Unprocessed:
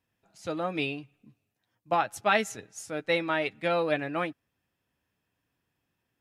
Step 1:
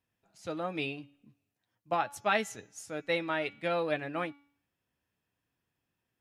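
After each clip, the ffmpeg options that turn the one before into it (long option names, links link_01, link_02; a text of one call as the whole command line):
ffmpeg -i in.wav -af "bandreject=frequency=284.5:width_type=h:width=4,bandreject=frequency=569:width_type=h:width=4,bandreject=frequency=853.5:width_type=h:width=4,bandreject=frequency=1138:width_type=h:width=4,bandreject=frequency=1422.5:width_type=h:width=4,bandreject=frequency=1707:width_type=h:width=4,bandreject=frequency=1991.5:width_type=h:width=4,bandreject=frequency=2276:width_type=h:width=4,bandreject=frequency=2560.5:width_type=h:width=4,bandreject=frequency=2845:width_type=h:width=4,bandreject=frequency=3129.5:width_type=h:width=4,bandreject=frequency=3414:width_type=h:width=4,bandreject=frequency=3698.5:width_type=h:width=4,bandreject=frequency=3983:width_type=h:width=4,bandreject=frequency=4267.5:width_type=h:width=4,bandreject=frequency=4552:width_type=h:width=4,bandreject=frequency=4836.5:width_type=h:width=4,bandreject=frequency=5121:width_type=h:width=4,bandreject=frequency=5405.5:width_type=h:width=4,bandreject=frequency=5690:width_type=h:width=4,bandreject=frequency=5974.5:width_type=h:width=4,bandreject=frequency=6259:width_type=h:width=4,bandreject=frequency=6543.5:width_type=h:width=4,bandreject=frequency=6828:width_type=h:width=4,bandreject=frequency=7112.5:width_type=h:width=4,volume=-4dB" out.wav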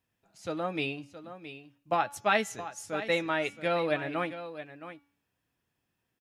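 ffmpeg -i in.wav -af "aecho=1:1:669:0.237,volume=2.5dB" out.wav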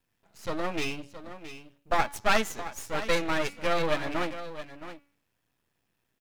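ffmpeg -i in.wav -af "aeval=exprs='max(val(0),0)':channel_layout=same,volume=7dB" out.wav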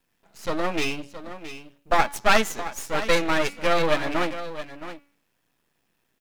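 ffmpeg -i in.wav -af "equalizer=frequency=91:width=2.3:gain=-11.5,volume=5.5dB" out.wav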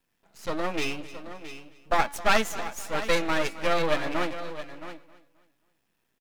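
ffmpeg -i in.wav -af "aecho=1:1:266|532|798:0.141|0.0494|0.0173,volume=-3.5dB" out.wav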